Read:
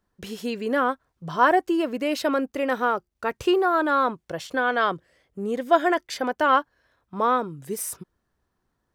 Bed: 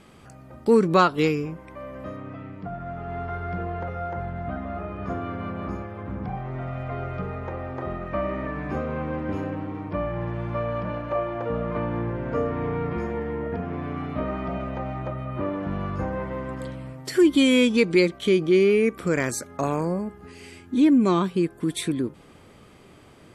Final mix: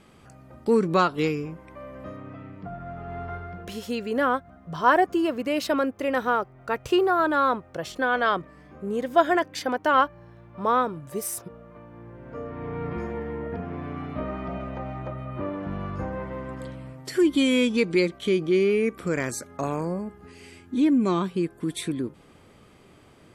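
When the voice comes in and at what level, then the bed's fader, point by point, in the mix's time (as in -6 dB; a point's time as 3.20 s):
3.45 s, -0.5 dB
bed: 3.34 s -3 dB
3.90 s -19 dB
11.88 s -19 dB
12.88 s -3 dB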